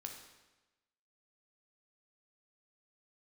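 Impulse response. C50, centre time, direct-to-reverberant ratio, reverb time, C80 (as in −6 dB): 5.5 dB, 32 ms, 2.5 dB, 1.1 s, 8.0 dB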